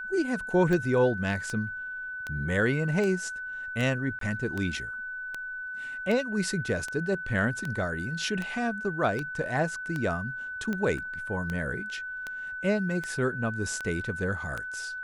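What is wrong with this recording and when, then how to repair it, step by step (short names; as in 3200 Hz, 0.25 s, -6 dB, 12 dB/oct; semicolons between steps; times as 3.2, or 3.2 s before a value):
tick 78 rpm -19 dBFS
tone 1500 Hz -34 dBFS
4.19–4.21 gap 23 ms
10.98 gap 4.5 ms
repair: de-click; notch 1500 Hz, Q 30; interpolate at 4.19, 23 ms; interpolate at 10.98, 4.5 ms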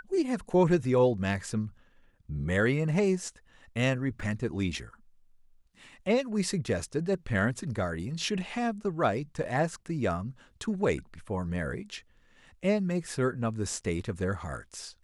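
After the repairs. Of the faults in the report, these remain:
none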